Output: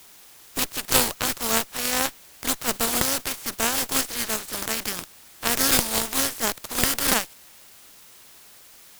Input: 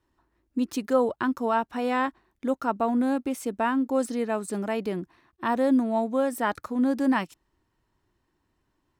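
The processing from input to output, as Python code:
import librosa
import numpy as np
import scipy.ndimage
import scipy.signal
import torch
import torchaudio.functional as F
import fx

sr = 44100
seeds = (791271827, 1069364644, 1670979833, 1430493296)

y = fx.spec_flatten(x, sr, power=0.21)
y = fx.cheby_harmonics(y, sr, harmonics=(6,), levels_db=(-6,), full_scale_db=0.0)
y = fx.quant_dither(y, sr, seeds[0], bits=8, dither='triangular')
y = F.gain(torch.from_numpy(y), -1.0).numpy()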